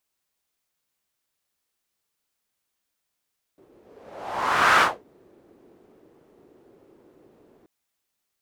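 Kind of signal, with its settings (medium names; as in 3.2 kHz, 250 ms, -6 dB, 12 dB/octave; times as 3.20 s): whoosh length 4.08 s, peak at 1.23 s, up 1.15 s, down 0.23 s, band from 370 Hz, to 1.4 kHz, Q 2.6, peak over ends 39.5 dB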